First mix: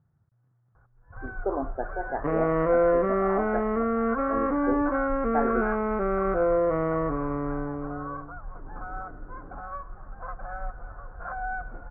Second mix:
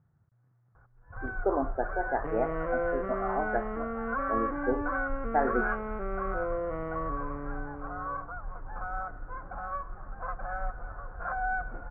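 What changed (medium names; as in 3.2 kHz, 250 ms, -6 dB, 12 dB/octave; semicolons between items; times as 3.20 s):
second sound -10.5 dB; master: remove distance through air 320 m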